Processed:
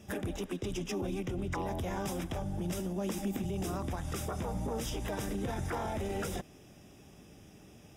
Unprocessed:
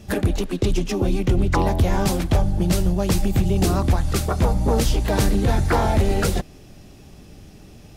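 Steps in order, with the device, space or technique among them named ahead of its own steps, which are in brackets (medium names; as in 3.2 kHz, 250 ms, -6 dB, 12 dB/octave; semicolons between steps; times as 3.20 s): PA system with an anti-feedback notch (high-pass 140 Hz 6 dB/octave; Butterworth band-stop 4.3 kHz, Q 4.5; peak limiter -20 dBFS, peak gain reduction 11 dB); 2.79–3.43 s: resonant low shelf 170 Hz -7.5 dB, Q 3; trim -7.5 dB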